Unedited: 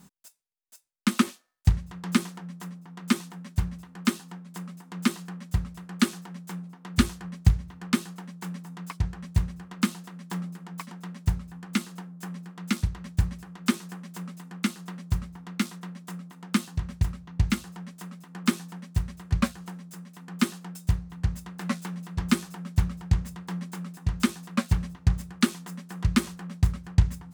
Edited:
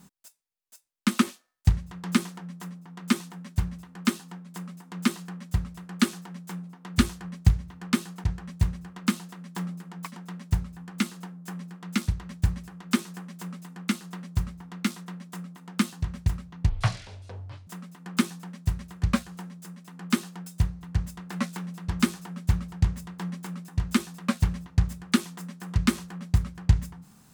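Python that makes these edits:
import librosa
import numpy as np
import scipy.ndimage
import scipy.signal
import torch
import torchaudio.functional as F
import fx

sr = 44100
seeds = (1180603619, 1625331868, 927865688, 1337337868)

y = fx.edit(x, sr, fx.cut(start_s=8.24, length_s=0.75),
    fx.speed_span(start_s=17.44, length_s=0.52, speed=0.53), tone=tone)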